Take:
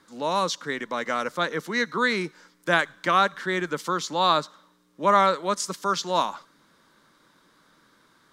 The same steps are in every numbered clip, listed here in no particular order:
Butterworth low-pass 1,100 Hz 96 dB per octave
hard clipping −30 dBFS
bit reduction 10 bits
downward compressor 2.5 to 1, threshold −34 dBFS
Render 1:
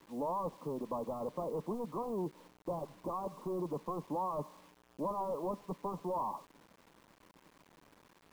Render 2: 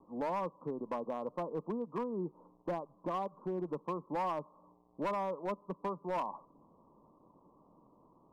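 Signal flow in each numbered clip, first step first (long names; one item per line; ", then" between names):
hard clipping, then downward compressor, then Butterworth low-pass, then bit reduction
bit reduction, then downward compressor, then Butterworth low-pass, then hard clipping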